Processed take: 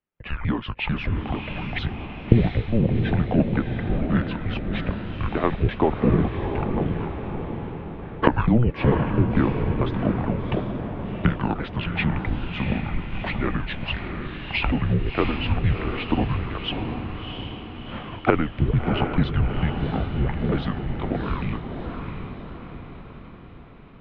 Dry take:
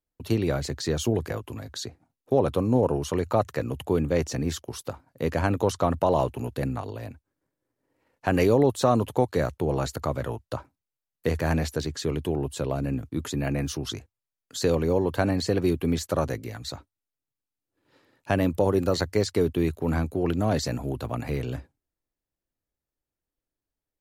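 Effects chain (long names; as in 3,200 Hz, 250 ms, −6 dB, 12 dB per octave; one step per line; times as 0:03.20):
pitch shifter swept by a sawtooth −9.5 semitones, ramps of 446 ms
camcorder AGC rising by 13 dB per second
feedback delay with all-pass diffusion 696 ms, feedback 53%, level −5.5 dB
single-sideband voice off tune −240 Hz 280–3,200 Hz
level +5.5 dB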